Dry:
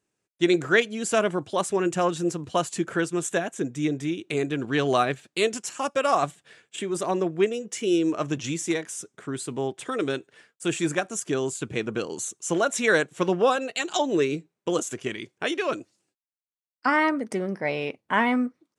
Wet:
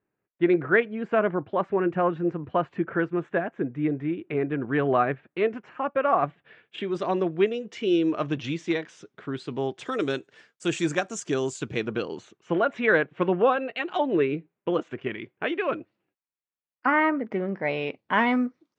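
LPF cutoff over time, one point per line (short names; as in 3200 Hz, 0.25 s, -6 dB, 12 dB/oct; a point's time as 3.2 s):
LPF 24 dB/oct
6.17 s 2100 Hz
6.94 s 4100 Hz
9.36 s 4100 Hz
9.99 s 6800 Hz
11.56 s 6800 Hz
12.46 s 2700 Hz
17.33 s 2700 Hz
18.26 s 6000 Hz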